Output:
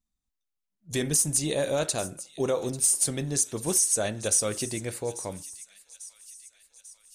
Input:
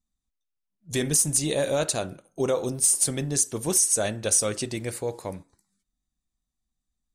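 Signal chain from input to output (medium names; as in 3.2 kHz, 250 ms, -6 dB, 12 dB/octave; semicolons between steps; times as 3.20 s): feedback echo behind a high-pass 843 ms, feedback 56%, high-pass 2.5 kHz, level -15 dB; trim -2 dB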